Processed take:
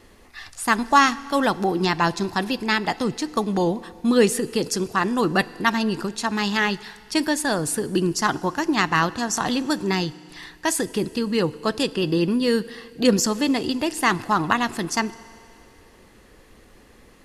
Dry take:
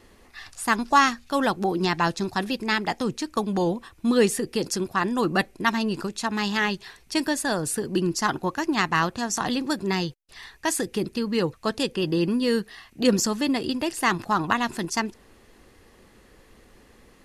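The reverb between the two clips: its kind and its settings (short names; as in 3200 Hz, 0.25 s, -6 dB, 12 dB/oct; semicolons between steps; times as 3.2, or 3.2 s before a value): FDN reverb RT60 2.4 s, low-frequency decay 0.9×, high-frequency decay 1×, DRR 17.5 dB; gain +2.5 dB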